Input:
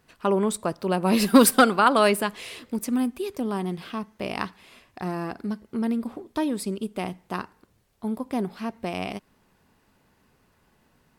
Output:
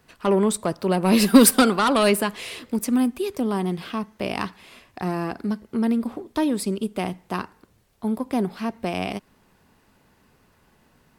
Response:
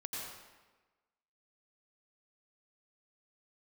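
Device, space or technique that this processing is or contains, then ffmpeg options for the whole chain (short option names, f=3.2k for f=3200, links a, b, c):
one-band saturation: -filter_complex "[0:a]acrossover=split=380|2900[a][b][c];[b]asoftclip=type=tanh:threshold=-21dB[d];[a][d][c]amix=inputs=3:normalize=0,volume=4dB"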